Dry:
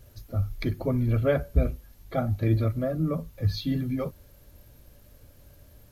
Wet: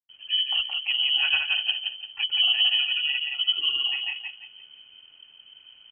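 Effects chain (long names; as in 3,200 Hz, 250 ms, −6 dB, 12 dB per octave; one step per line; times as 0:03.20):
granular cloud, pitch spread up and down by 0 semitones
on a send: repeating echo 172 ms, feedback 31%, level −3.5 dB
on the sum: voice inversion scrambler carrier 3,100 Hz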